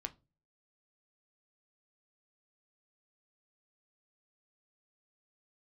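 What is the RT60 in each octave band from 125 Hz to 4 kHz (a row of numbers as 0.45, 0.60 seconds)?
0.55, 0.45, 0.35, 0.25, 0.20, 0.20 seconds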